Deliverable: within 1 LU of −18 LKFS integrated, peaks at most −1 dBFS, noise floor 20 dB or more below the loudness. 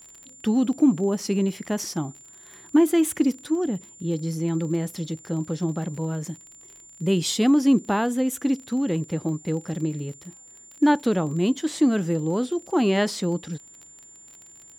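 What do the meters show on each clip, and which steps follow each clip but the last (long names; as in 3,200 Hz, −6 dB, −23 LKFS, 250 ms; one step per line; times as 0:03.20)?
crackle rate 31 per second; interfering tone 7,200 Hz; level of the tone −46 dBFS; integrated loudness −24.5 LKFS; sample peak −9.0 dBFS; target loudness −18.0 LKFS
→ click removal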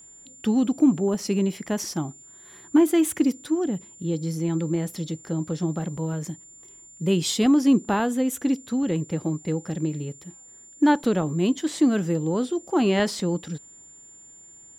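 crackle rate 0.14 per second; interfering tone 7,200 Hz; level of the tone −46 dBFS
→ notch filter 7,200 Hz, Q 30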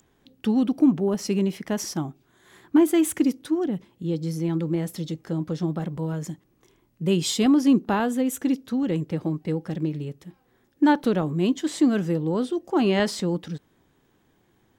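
interfering tone none found; integrated loudness −24.5 LKFS; sample peak −9.0 dBFS; target loudness −18.0 LKFS
→ level +6.5 dB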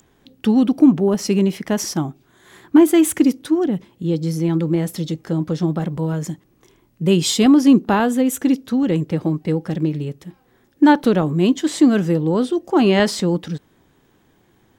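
integrated loudness −18.0 LKFS; sample peak −2.5 dBFS; background noise floor −59 dBFS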